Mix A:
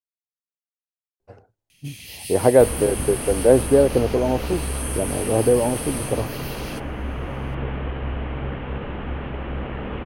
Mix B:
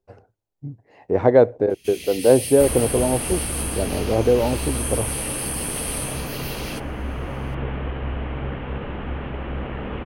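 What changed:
speech: entry -1.20 s; first sound +3.5 dB

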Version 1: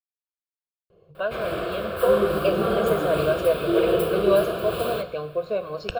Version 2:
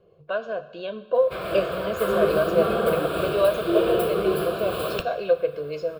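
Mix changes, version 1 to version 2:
speech: entry -0.90 s; master: add bass shelf 130 Hz -3.5 dB

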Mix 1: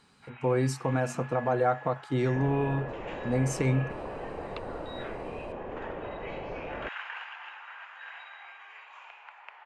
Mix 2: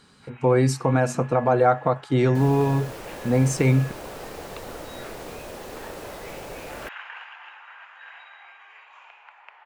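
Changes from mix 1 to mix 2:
speech +7.5 dB; second sound: remove brick-wall FIR low-pass 1.2 kHz

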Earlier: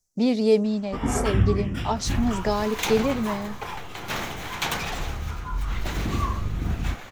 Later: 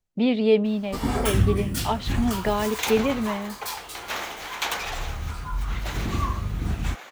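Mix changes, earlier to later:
speech: add resonant high shelf 4.3 kHz -11.5 dB, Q 3; first sound: remove Savitzky-Golay filter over 25 samples; second sound: add high-pass 410 Hz 12 dB/octave

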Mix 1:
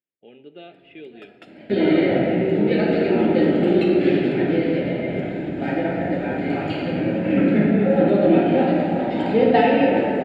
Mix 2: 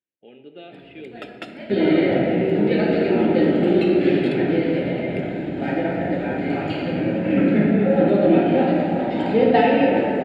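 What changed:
speech: send +6.0 dB; first sound +11.5 dB

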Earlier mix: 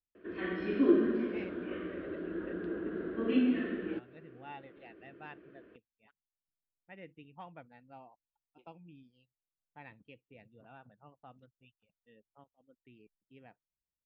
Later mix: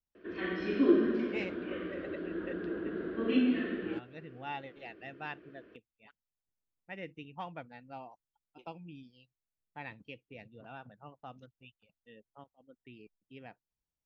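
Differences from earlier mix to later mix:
speech +6.0 dB; master: remove distance through air 210 m

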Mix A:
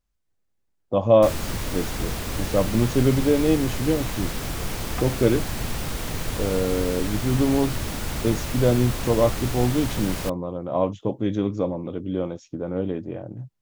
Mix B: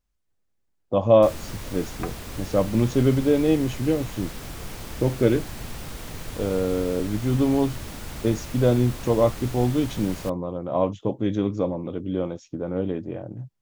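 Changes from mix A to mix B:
first sound -7.0 dB; second sound: entry -2.95 s

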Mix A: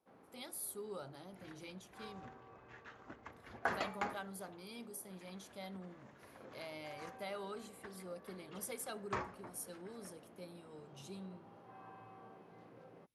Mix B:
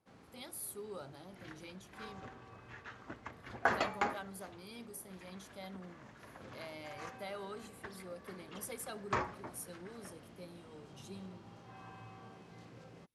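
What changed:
first sound: remove band-pass filter 590 Hz, Q 0.62; second sound +5.5 dB

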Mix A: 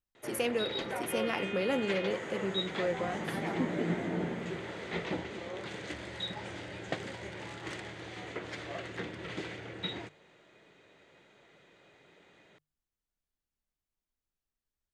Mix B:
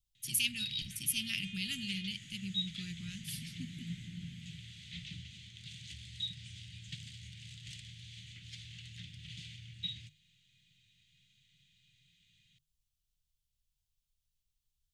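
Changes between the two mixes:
speech +9.5 dB; master: add Chebyshev band-stop 140–3000 Hz, order 3

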